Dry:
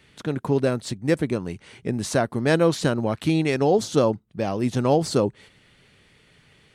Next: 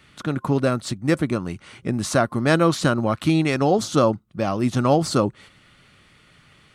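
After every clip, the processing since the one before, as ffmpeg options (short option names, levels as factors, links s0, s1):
-af "superequalizer=7b=0.562:10b=2,volume=1.33"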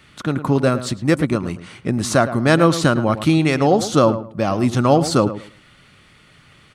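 -filter_complex "[0:a]asplit=2[s0][s1];[s1]adelay=108,lowpass=f=2000:p=1,volume=0.251,asplit=2[s2][s3];[s3]adelay=108,lowpass=f=2000:p=1,volume=0.23,asplit=2[s4][s5];[s5]adelay=108,lowpass=f=2000:p=1,volume=0.23[s6];[s0][s2][s4][s6]amix=inputs=4:normalize=0,volume=1.5"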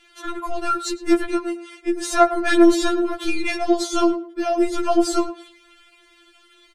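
-filter_complex "[0:a]acrossover=split=240|1300[s0][s1][s2];[s0]aeval=exprs='clip(val(0),-1,0.0473)':c=same[s3];[s1]asplit=2[s4][s5];[s5]adelay=32,volume=0.224[s6];[s4][s6]amix=inputs=2:normalize=0[s7];[s3][s7][s2]amix=inputs=3:normalize=0,afftfilt=real='re*4*eq(mod(b,16),0)':imag='im*4*eq(mod(b,16),0)':win_size=2048:overlap=0.75"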